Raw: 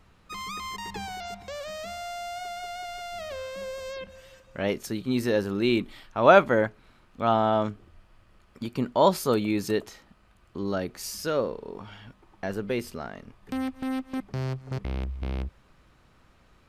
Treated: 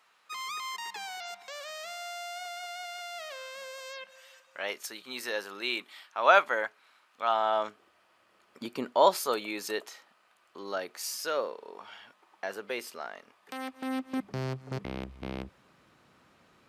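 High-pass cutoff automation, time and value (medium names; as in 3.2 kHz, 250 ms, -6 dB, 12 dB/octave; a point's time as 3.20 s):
7.29 s 900 Hz
8.66 s 310 Hz
9.21 s 630 Hz
13.54 s 630 Hz
14.20 s 160 Hz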